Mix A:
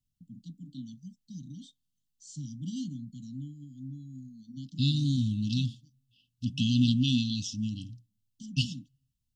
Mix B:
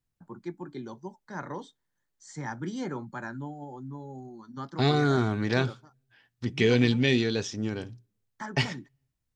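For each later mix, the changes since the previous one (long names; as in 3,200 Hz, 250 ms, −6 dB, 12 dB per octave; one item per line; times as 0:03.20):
master: remove linear-phase brick-wall band-stop 290–2,600 Hz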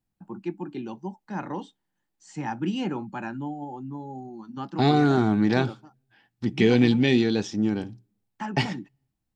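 first voice: remove Butterworth band-reject 2,700 Hz, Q 2.7
master: add thirty-one-band graphic EQ 200 Hz +11 dB, 315 Hz +9 dB, 800 Hz +9 dB, 6,300 Hz −3 dB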